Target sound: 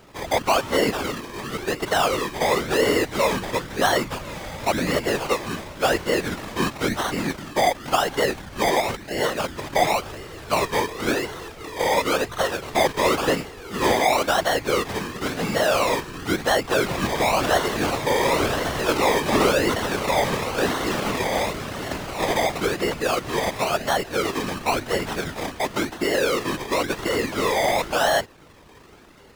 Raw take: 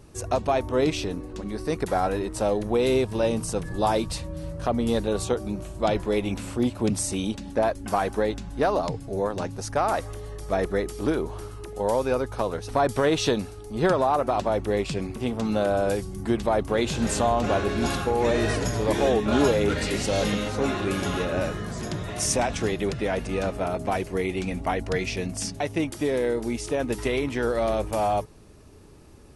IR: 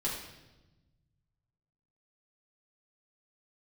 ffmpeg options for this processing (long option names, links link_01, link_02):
-filter_complex "[0:a]acrusher=samples=25:mix=1:aa=0.000001:lfo=1:lforange=15:lforate=0.95,asplit=2[link_01][link_02];[link_02]highpass=frequency=720:poles=1,volume=12dB,asoftclip=type=tanh:threshold=-9.5dB[link_03];[link_01][link_03]amix=inputs=2:normalize=0,lowpass=frequency=7100:poles=1,volume=-6dB,afftfilt=real='hypot(re,im)*cos(2*PI*random(0))':imag='hypot(re,im)*sin(2*PI*random(1))':win_size=512:overlap=0.75,volume=6.5dB"